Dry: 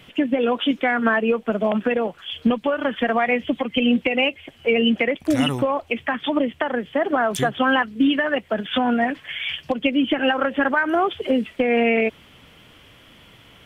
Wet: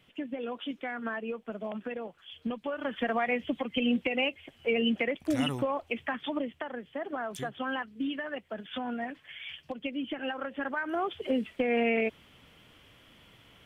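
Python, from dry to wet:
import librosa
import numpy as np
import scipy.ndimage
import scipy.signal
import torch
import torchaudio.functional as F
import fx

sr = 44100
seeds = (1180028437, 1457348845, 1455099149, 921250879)

y = fx.gain(x, sr, db=fx.line((2.42, -16.0), (3.02, -9.0), (6.06, -9.0), (6.75, -15.0), (10.52, -15.0), (11.37, -8.5)))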